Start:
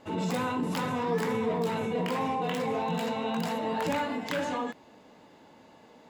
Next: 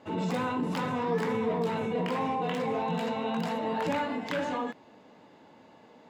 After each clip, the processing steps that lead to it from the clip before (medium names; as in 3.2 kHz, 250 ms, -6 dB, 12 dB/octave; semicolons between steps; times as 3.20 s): high-pass 80 Hz; treble shelf 6.9 kHz -11.5 dB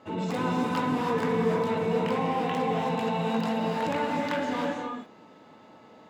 whistle 1.3 kHz -60 dBFS; gated-style reverb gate 350 ms rising, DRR 1 dB